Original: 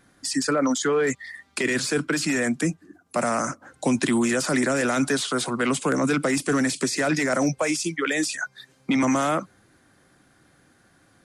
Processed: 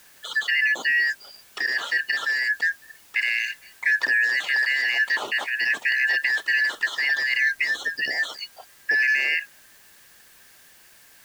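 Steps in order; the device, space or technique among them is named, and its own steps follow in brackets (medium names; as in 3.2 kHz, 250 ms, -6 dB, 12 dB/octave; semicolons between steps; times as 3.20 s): split-band scrambled radio (four frequency bands reordered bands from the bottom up 3142; band-pass 350–3100 Hz; white noise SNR 28 dB); 7.07–8.09 s: bass shelf 190 Hz +8 dB; trim +1 dB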